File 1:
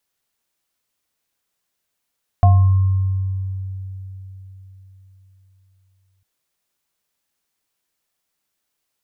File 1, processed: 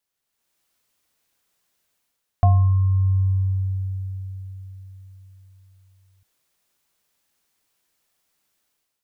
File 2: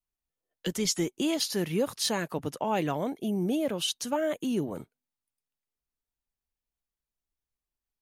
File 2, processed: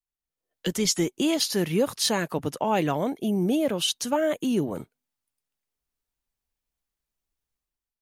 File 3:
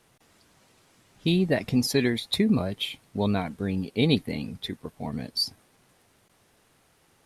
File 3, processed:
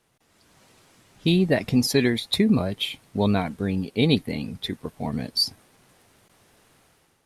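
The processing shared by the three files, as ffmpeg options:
-af "dynaudnorm=f=120:g=7:m=3.16,volume=0.531"

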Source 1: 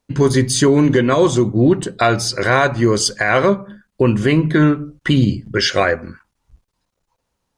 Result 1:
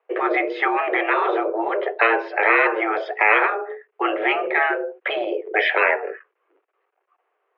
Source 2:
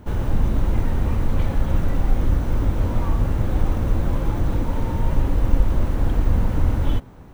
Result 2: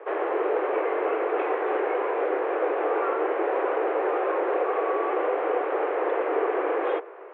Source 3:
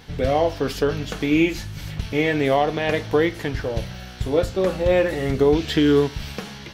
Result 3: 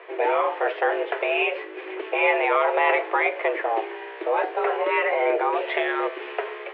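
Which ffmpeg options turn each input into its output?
-af "highpass=f=170:t=q:w=0.5412,highpass=f=170:t=q:w=1.307,lowpass=f=2400:t=q:w=0.5176,lowpass=f=2400:t=q:w=0.7071,lowpass=f=2400:t=q:w=1.932,afreqshift=220,afftfilt=real='re*lt(hypot(re,im),0.562)':imag='im*lt(hypot(re,im),0.562)':win_size=1024:overlap=0.75,volume=1.78"

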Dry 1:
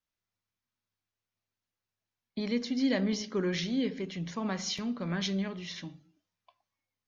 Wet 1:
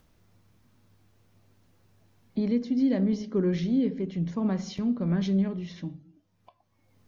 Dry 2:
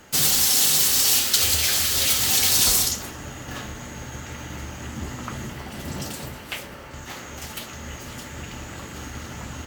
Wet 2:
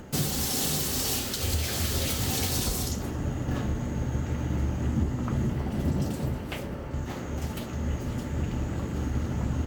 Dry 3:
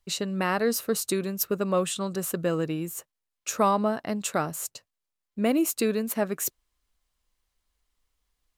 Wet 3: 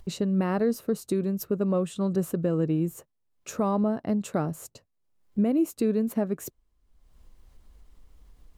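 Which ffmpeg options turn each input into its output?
-af "acompressor=mode=upward:threshold=0.00631:ratio=2.5,tiltshelf=f=780:g=9,alimiter=limit=0.15:level=0:latency=1:release=456"

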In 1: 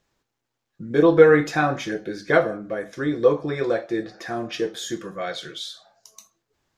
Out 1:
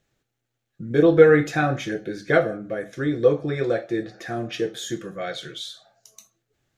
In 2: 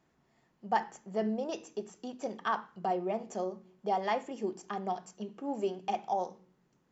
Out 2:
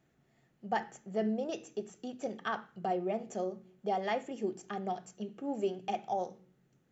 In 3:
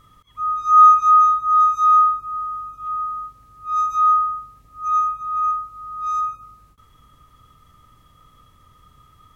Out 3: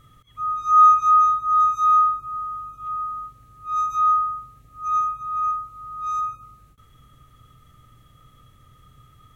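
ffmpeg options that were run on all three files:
-af "equalizer=f=125:t=o:w=0.33:g=8,equalizer=f=1000:t=o:w=0.33:g=-12,equalizer=f=5000:t=o:w=0.33:g=-5"

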